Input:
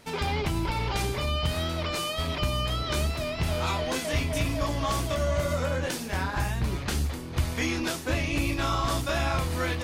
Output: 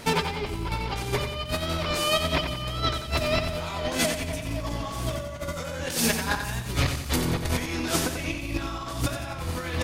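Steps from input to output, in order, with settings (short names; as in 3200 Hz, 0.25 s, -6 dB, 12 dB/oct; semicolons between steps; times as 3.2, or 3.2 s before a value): 5.53–7.16 high shelf 2600 Hz +8.5 dB; negative-ratio compressor -33 dBFS, ratio -0.5; feedback echo 90 ms, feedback 48%, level -7.5 dB; gain +5.5 dB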